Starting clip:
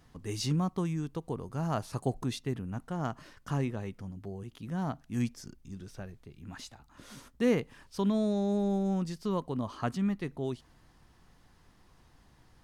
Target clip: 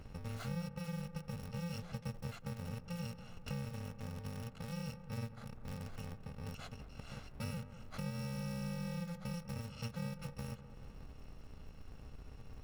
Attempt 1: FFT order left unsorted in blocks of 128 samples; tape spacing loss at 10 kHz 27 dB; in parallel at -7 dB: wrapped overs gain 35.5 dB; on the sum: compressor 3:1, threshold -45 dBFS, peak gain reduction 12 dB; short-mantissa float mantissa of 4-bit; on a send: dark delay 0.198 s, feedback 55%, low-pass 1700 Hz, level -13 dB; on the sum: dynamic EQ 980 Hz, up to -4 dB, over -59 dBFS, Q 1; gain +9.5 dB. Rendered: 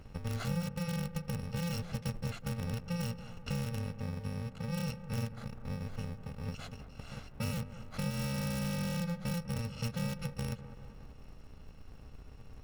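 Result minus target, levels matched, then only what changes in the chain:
wrapped overs: distortion -17 dB; compressor: peak gain reduction -5.5 dB
change: wrapped overs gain 44 dB; change: compressor 3:1, threshold -54 dBFS, peak gain reduction 17.5 dB

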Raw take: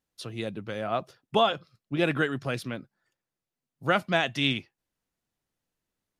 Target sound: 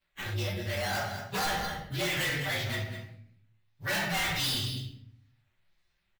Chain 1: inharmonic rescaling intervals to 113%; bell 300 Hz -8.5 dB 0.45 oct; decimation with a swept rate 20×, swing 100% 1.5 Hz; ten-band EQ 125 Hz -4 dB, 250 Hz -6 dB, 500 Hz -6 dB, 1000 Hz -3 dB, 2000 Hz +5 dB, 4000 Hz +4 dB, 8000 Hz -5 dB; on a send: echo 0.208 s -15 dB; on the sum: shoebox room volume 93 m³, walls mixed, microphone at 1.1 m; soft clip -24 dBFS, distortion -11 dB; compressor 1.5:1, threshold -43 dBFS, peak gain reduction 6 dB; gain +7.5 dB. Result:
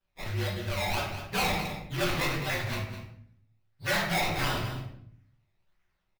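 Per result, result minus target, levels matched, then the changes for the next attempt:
decimation with a swept rate: distortion +9 dB; soft clip: distortion -6 dB
change: decimation with a swept rate 6×, swing 100% 1.5 Hz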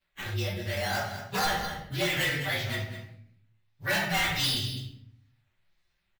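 soft clip: distortion -5 dB
change: soft clip -31.5 dBFS, distortion -5 dB

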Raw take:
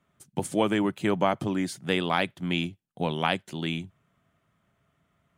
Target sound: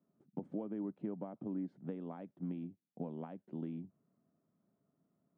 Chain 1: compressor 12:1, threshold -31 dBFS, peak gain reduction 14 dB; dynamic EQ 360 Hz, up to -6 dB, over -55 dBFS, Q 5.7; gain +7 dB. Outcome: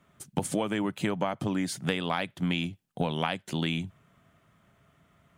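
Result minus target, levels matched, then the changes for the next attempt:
250 Hz band -3.0 dB
add after dynamic EQ: ladder band-pass 300 Hz, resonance 30%

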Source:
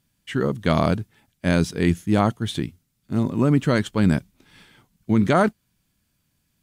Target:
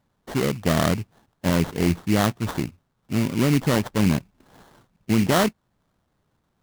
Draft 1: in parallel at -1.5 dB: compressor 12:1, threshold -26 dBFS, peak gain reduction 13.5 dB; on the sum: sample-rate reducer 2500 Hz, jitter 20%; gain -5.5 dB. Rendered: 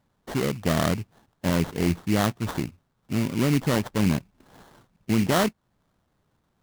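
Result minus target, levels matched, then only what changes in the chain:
compressor: peak gain reduction +9.5 dB
change: compressor 12:1, threshold -15.5 dBFS, peak gain reduction 4 dB

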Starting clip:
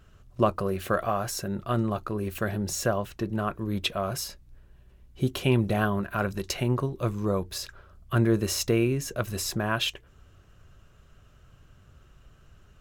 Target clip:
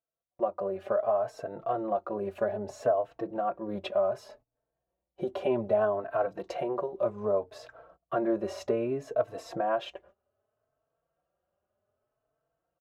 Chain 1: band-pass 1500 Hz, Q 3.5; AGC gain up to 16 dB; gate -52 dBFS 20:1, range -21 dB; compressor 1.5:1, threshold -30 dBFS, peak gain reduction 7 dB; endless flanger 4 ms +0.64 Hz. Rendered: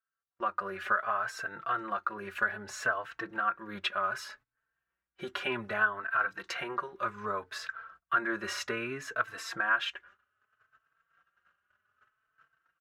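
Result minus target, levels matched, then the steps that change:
2000 Hz band +17.5 dB
change: band-pass 640 Hz, Q 3.5

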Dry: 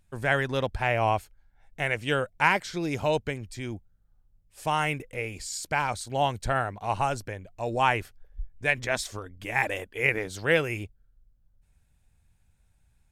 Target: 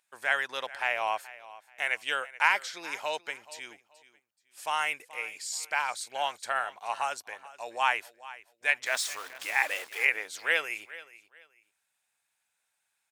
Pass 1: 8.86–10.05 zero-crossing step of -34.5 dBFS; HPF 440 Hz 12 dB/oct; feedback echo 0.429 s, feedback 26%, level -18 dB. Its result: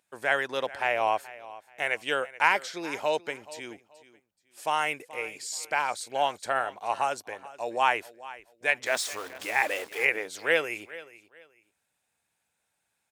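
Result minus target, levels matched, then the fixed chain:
500 Hz band +6.5 dB
8.86–10.05 zero-crossing step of -34.5 dBFS; HPF 960 Hz 12 dB/oct; feedback echo 0.429 s, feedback 26%, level -18 dB

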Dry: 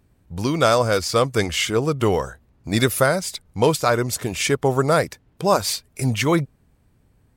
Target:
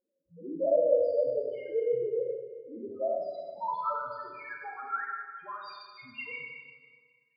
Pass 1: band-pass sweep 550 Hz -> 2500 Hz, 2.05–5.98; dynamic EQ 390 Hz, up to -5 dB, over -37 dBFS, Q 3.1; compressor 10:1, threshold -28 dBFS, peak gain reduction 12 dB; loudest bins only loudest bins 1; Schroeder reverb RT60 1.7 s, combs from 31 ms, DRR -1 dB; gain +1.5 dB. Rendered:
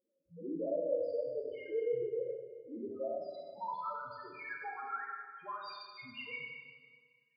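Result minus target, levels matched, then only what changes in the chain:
compressor: peak gain reduction +12 dB
remove: compressor 10:1, threshold -28 dBFS, peak gain reduction 12 dB

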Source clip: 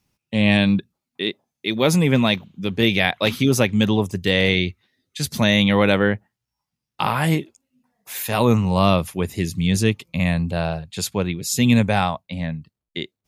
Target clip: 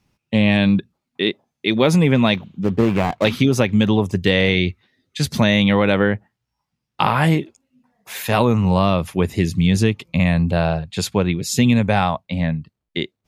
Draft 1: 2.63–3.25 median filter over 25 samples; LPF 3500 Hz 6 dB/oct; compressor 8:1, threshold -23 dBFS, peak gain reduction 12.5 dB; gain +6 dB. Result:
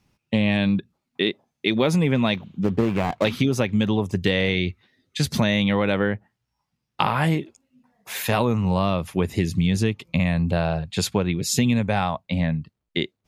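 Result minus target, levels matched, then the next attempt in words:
compressor: peak gain reduction +5 dB
2.63–3.25 median filter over 25 samples; LPF 3500 Hz 6 dB/oct; compressor 8:1, threshold -17 dBFS, peak gain reduction 7.5 dB; gain +6 dB

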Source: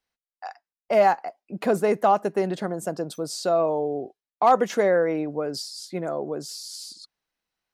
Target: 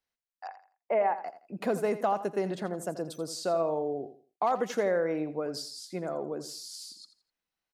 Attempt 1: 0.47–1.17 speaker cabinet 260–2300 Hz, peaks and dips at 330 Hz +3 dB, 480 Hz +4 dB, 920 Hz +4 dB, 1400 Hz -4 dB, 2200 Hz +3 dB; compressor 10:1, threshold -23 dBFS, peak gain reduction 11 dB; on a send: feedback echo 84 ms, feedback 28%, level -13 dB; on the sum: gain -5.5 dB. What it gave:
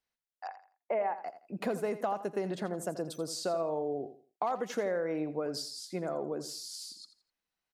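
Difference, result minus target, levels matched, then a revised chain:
compressor: peak gain reduction +5.5 dB
0.47–1.17 speaker cabinet 260–2300 Hz, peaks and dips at 330 Hz +3 dB, 480 Hz +4 dB, 920 Hz +4 dB, 1400 Hz -4 dB, 2200 Hz +3 dB; compressor 10:1, threshold -17 dBFS, peak gain reduction 5.5 dB; on a send: feedback echo 84 ms, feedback 28%, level -13 dB; on the sum: gain -5.5 dB

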